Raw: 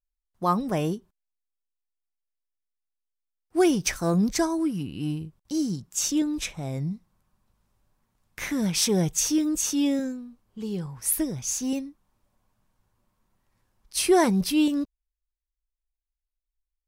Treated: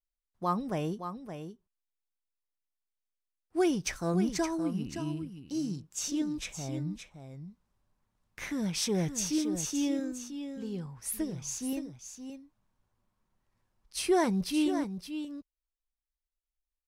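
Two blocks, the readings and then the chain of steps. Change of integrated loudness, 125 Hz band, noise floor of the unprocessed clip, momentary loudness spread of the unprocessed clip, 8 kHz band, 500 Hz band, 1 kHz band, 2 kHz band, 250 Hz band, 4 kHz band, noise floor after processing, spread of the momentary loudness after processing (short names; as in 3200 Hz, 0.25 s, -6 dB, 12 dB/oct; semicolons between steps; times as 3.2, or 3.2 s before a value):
-7.0 dB, -6.0 dB, under -85 dBFS, 12 LU, -8.5 dB, -6.0 dB, -6.0 dB, -6.0 dB, -6.0 dB, -7.0 dB, under -85 dBFS, 15 LU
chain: high shelf 11000 Hz -10 dB; echo 0.569 s -9 dB; gain -6.5 dB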